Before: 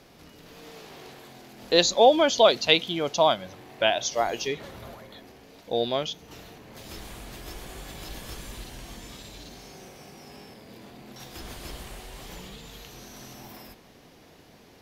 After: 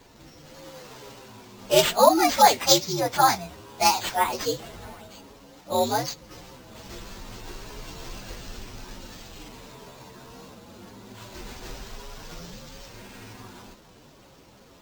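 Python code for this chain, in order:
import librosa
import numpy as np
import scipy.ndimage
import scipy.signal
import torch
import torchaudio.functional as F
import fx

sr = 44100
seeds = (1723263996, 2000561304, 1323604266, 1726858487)

y = fx.partial_stretch(x, sr, pct=125)
y = fx.peak_eq(y, sr, hz=4700.0, db=3.0, octaves=0.77)
y = fx.sample_hold(y, sr, seeds[0], rate_hz=11000.0, jitter_pct=0)
y = F.gain(torch.from_numpy(y), 5.0).numpy()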